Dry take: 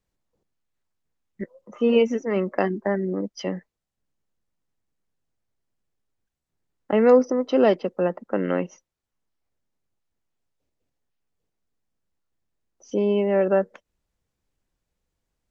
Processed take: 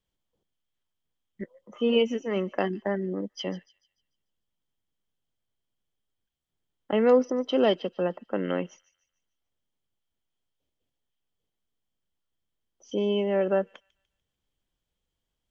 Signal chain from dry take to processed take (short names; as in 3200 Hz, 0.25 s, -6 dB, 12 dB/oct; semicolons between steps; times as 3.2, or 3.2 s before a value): bell 3200 Hz +14.5 dB 0.22 oct; thin delay 0.147 s, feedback 40%, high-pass 4000 Hz, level -13.5 dB; gain -4.5 dB